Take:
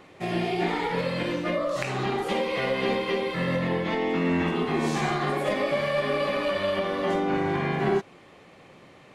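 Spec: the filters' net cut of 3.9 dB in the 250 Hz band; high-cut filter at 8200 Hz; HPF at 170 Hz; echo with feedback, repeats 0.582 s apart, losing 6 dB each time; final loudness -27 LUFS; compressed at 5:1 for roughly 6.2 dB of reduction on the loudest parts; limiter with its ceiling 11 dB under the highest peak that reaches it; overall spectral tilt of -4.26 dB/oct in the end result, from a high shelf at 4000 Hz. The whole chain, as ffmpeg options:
-af "highpass=170,lowpass=8.2k,equalizer=f=250:t=o:g=-4,highshelf=f=4k:g=7.5,acompressor=threshold=-29dB:ratio=5,alimiter=level_in=3.5dB:limit=-24dB:level=0:latency=1,volume=-3.5dB,aecho=1:1:582|1164|1746|2328|2910|3492:0.501|0.251|0.125|0.0626|0.0313|0.0157,volume=8dB"

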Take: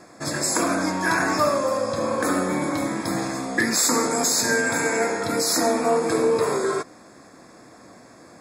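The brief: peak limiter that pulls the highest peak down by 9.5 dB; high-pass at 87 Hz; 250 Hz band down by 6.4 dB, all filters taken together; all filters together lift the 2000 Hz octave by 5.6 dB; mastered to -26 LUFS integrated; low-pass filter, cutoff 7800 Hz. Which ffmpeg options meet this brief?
-af "highpass=87,lowpass=7.8k,equalizer=f=250:t=o:g=-8.5,equalizer=f=2k:t=o:g=7.5,volume=-2.5dB,alimiter=limit=-17dB:level=0:latency=1"

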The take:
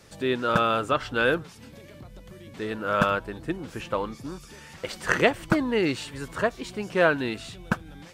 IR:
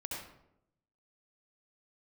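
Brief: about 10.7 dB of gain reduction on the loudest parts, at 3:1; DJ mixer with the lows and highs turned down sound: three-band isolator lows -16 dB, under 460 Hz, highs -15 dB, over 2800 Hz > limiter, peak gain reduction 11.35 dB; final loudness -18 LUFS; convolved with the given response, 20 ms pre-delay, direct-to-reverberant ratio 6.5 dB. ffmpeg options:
-filter_complex "[0:a]acompressor=threshold=-31dB:ratio=3,asplit=2[a][b];[1:a]atrim=start_sample=2205,adelay=20[c];[b][c]afir=irnorm=-1:irlink=0,volume=-7dB[d];[a][d]amix=inputs=2:normalize=0,acrossover=split=460 2800:gain=0.158 1 0.178[e][f][g];[e][f][g]amix=inputs=3:normalize=0,volume=22.5dB,alimiter=limit=-6dB:level=0:latency=1"

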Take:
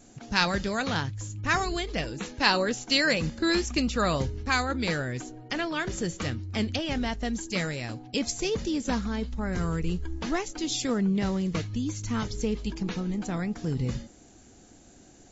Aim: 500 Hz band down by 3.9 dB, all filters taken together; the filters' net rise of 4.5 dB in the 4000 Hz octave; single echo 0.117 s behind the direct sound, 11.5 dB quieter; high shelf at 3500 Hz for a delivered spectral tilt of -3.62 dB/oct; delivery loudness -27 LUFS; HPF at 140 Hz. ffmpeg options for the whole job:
-af "highpass=140,equalizer=f=500:t=o:g=-5,highshelf=f=3.5k:g=-5.5,equalizer=f=4k:t=o:g=9,aecho=1:1:117:0.266,volume=1dB"

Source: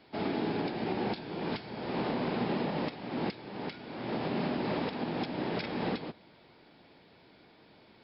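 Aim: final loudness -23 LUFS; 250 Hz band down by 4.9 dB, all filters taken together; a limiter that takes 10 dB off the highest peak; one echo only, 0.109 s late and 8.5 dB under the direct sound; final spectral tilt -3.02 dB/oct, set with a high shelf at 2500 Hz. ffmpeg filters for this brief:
-af "equalizer=f=250:t=o:g=-6.5,highshelf=f=2.5k:g=7,alimiter=level_in=7.5dB:limit=-24dB:level=0:latency=1,volume=-7.5dB,aecho=1:1:109:0.376,volume=17dB"

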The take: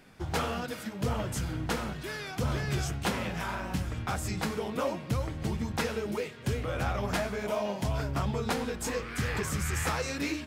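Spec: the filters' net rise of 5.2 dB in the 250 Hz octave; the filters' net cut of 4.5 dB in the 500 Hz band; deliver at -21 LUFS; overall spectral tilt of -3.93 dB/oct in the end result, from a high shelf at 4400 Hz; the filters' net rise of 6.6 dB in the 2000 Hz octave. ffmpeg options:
-af "equalizer=f=250:t=o:g=8.5,equalizer=f=500:t=o:g=-8.5,equalizer=f=2k:t=o:g=7,highshelf=f=4.4k:g=9,volume=8dB"

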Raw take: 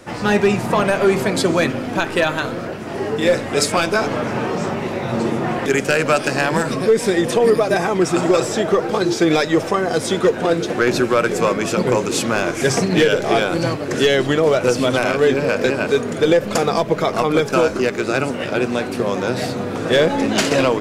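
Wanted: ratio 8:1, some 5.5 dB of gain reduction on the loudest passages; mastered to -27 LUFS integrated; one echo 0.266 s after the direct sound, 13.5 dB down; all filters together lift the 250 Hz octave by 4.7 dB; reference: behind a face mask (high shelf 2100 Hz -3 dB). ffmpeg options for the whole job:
-af "equalizer=f=250:t=o:g=6.5,acompressor=threshold=-13dB:ratio=8,highshelf=f=2.1k:g=-3,aecho=1:1:266:0.211,volume=-8dB"

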